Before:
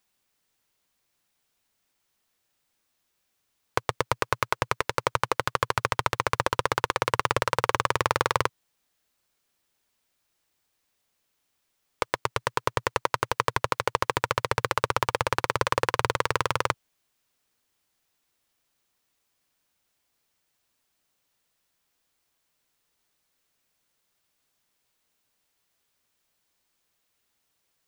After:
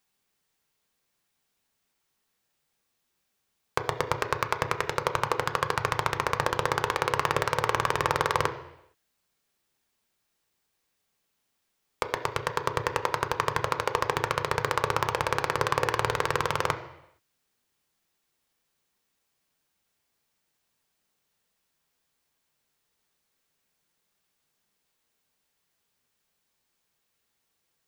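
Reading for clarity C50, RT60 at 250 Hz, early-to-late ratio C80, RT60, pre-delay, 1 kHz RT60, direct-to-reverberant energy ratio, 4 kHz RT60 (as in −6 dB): 12.0 dB, 0.80 s, 14.0 dB, 0.85 s, 3 ms, 0.85 s, 6.0 dB, 0.85 s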